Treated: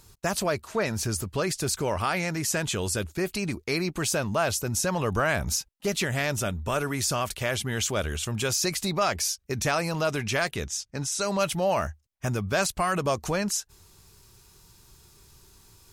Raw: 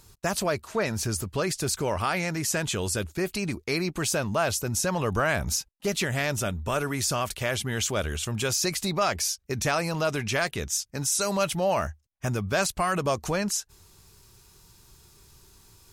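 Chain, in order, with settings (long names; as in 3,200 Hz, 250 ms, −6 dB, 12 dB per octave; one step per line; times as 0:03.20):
0:10.67–0:11.39: high-frequency loss of the air 50 metres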